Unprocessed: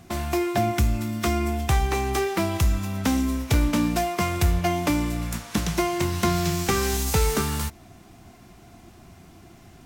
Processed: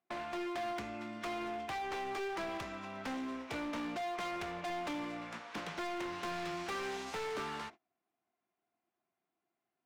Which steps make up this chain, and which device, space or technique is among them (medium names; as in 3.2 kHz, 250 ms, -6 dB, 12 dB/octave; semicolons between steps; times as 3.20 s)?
walkie-talkie (band-pass 410–2700 Hz; hard clipper -31 dBFS, distortion -6 dB; gate -45 dBFS, range -28 dB); trim -5.5 dB